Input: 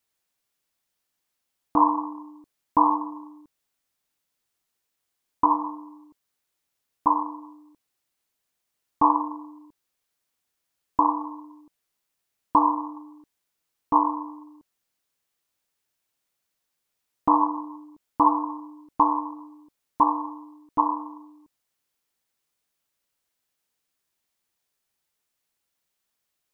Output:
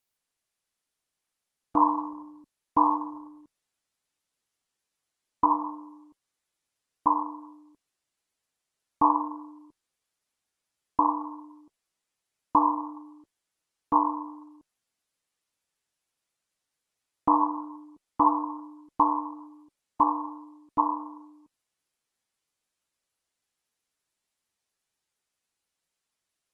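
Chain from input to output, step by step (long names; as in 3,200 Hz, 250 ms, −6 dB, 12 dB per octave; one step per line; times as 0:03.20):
level −2.5 dB
Opus 20 kbit/s 48,000 Hz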